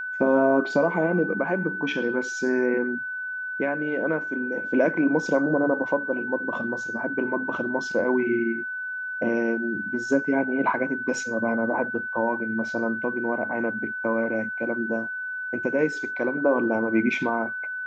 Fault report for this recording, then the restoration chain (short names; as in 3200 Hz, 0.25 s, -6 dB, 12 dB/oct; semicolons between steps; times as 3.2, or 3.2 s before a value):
tone 1500 Hz -29 dBFS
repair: notch 1500 Hz, Q 30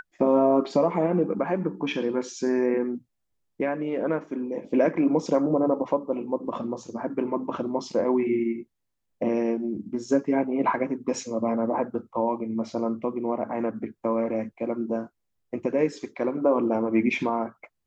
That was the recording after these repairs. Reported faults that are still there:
none